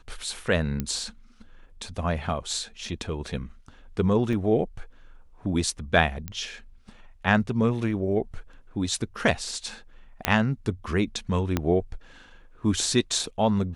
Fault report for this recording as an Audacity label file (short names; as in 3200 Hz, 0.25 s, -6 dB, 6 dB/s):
0.800000	0.800000	pop -14 dBFS
4.330000	4.330000	gap 2.1 ms
6.280000	6.280000	pop -18 dBFS
10.250000	10.250000	pop -5 dBFS
11.570000	11.570000	pop -10 dBFS